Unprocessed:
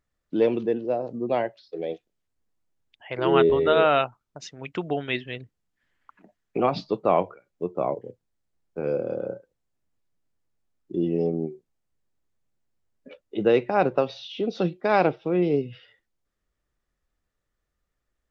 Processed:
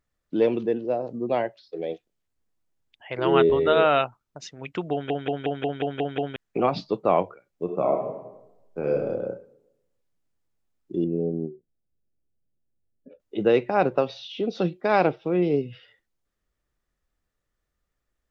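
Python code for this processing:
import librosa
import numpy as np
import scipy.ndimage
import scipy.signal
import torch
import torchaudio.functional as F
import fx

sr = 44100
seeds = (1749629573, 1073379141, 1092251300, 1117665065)

y = fx.reverb_throw(x, sr, start_s=7.63, length_s=1.41, rt60_s=0.94, drr_db=1.5)
y = fx.moving_average(y, sr, points=42, at=(11.04, 13.2))
y = fx.edit(y, sr, fx.stutter_over(start_s=4.92, slice_s=0.18, count=8), tone=tone)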